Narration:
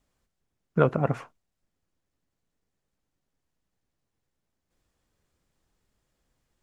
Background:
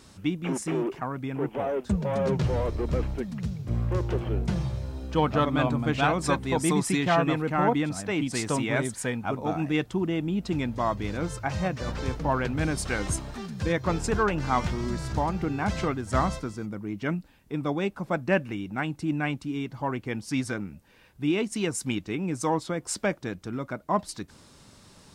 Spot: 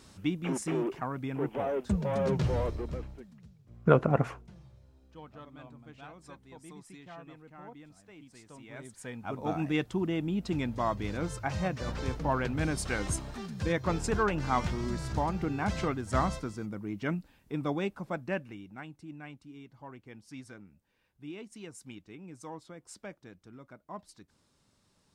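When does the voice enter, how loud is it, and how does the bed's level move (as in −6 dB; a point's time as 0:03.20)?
3.10 s, −0.5 dB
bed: 0:02.64 −3 dB
0:03.54 −25 dB
0:08.50 −25 dB
0:09.50 −3.5 dB
0:17.75 −3.5 dB
0:19.08 −17.5 dB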